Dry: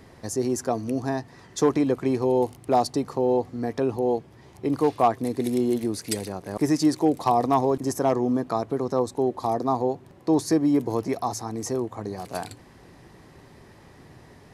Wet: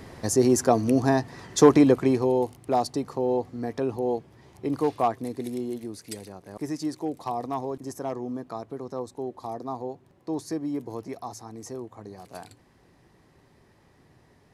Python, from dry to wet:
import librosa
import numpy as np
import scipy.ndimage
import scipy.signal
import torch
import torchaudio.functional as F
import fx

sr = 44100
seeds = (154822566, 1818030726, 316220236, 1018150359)

y = fx.gain(x, sr, db=fx.line((1.85, 5.5), (2.45, -3.0), (4.94, -3.0), (5.8, -9.5)))